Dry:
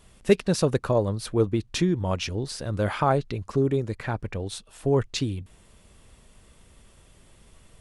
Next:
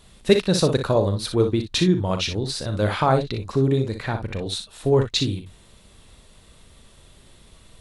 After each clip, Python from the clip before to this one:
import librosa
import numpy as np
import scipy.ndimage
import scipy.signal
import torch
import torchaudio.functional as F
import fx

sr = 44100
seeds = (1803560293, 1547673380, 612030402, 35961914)

y = fx.peak_eq(x, sr, hz=3900.0, db=9.5, octaves=0.34)
y = fx.room_early_taps(y, sr, ms=(38, 60), db=(-11.0, -8.5))
y = y * 10.0 ** (2.5 / 20.0)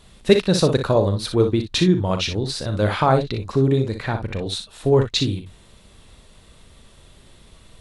y = fx.high_shelf(x, sr, hz=7600.0, db=-4.5)
y = y * 10.0 ** (2.0 / 20.0)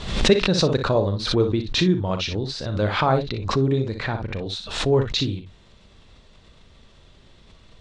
y = scipy.signal.sosfilt(scipy.signal.butter(4, 6300.0, 'lowpass', fs=sr, output='sos'), x)
y = fx.pre_swell(y, sr, db_per_s=75.0)
y = y * 10.0 ** (-3.0 / 20.0)